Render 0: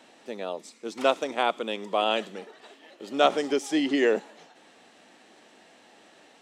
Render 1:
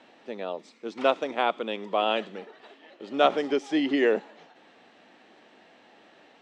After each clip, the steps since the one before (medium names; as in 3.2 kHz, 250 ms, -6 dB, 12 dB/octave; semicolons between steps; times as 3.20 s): low-pass 3.7 kHz 12 dB/octave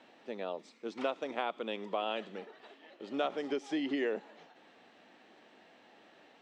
compression 3:1, threshold -27 dBFS, peak gain reduction 10 dB; trim -4.5 dB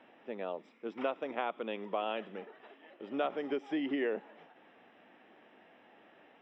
Savitzky-Golay filter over 25 samples